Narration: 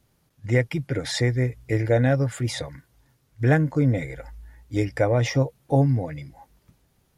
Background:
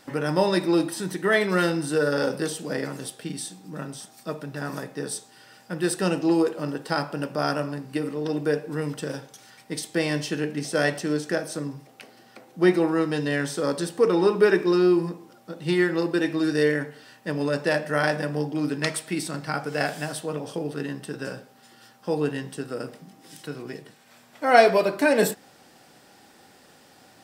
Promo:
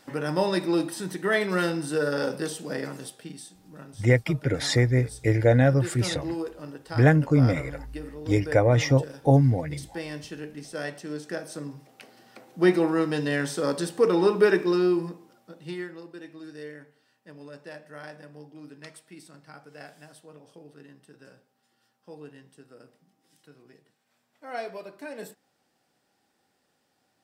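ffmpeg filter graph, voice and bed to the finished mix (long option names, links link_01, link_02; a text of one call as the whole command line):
ffmpeg -i stem1.wav -i stem2.wav -filter_complex "[0:a]adelay=3550,volume=1dB[link_01];[1:a]volume=6.5dB,afade=type=out:start_time=2.9:duration=0.55:silence=0.421697,afade=type=in:start_time=11:duration=1.5:silence=0.334965,afade=type=out:start_time=14.42:duration=1.58:silence=0.125893[link_02];[link_01][link_02]amix=inputs=2:normalize=0" out.wav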